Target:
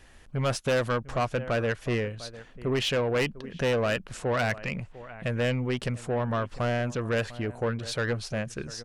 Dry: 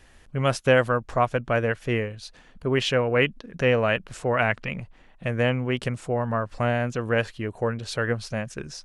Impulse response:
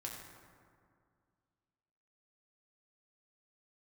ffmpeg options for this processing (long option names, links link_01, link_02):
-filter_complex "[0:a]asplit=2[link_01][link_02];[link_02]adelay=699.7,volume=-20dB,highshelf=frequency=4000:gain=-15.7[link_03];[link_01][link_03]amix=inputs=2:normalize=0,asoftclip=type=tanh:threshold=-21dB"